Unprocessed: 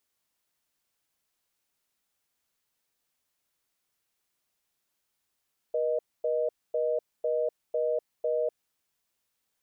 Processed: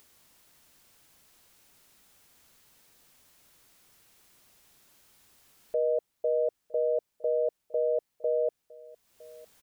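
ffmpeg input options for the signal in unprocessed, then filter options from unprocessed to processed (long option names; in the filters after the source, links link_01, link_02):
-f lavfi -i "aevalsrc='0.0422*(sin(2*PI*480*t)+sin(2*PI*620*t))*clip(min(mod(t,0.5),0.25-mod(t,0.5))/0.005,0,1)':duration=2.98:sample_rate=44100"
-af "lowshelf=frequency=350:gain=5,acompressor=mode=upward:threshold=-46dB:ratio=2.5,aecho=1:1:959:0.075"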